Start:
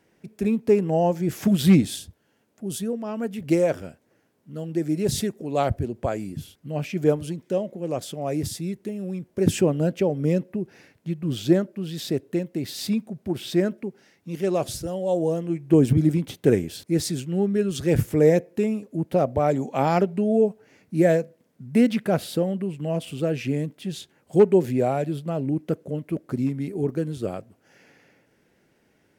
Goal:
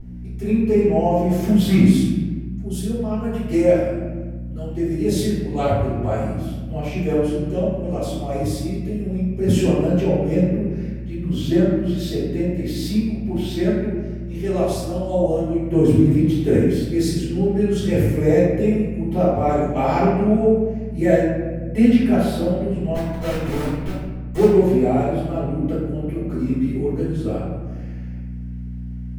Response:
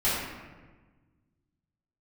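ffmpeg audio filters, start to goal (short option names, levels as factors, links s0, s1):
-filter_complex "[0:a]asplit=3[s0][s1][s2];[s0]afade=t=out:st=22.94:d=0.02[s3];[s1]aeval=exprs='val(0)*gte(abs(val(0)),0.0562)':c=same,afade=t=in:st=22.94:d=0.02,afade=t=out:st=24.47:d=0.02[s4];[s2]afade=t=in:st=24.47:d=0.02[s5];[s3][s4][s5]amix=inputs=3:normalize=0,aeval=exprs='val(0)+0.0224*(sin(2*PI*60*n/s)+sin(2*PI*2*60*n/s)/2+sin(2*PI*3*60*n/s)/3+sin(2*PI*4*60*n/s)/4+sin(2*PI*5*60*n/s)/5)':c=same[s6];[1:a]atrim=start_sample=2205[s7];[s6][s7]afir=irnorm=-1:irlink=0,volume=0.335"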